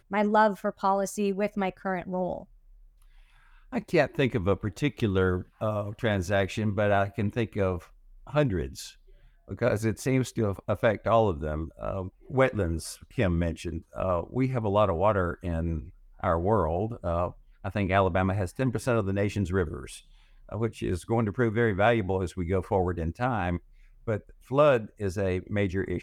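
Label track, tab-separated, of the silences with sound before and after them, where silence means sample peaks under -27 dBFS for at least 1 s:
2.380000	3.730000	silence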